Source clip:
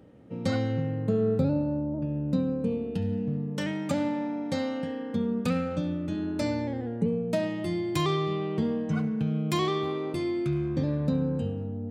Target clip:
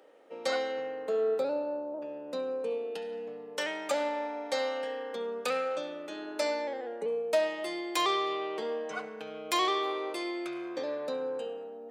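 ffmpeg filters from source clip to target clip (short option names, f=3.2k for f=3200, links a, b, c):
-af "highpass=f=460:w=0.5412,highpass=f=460:w=1.3066,volume=3dB"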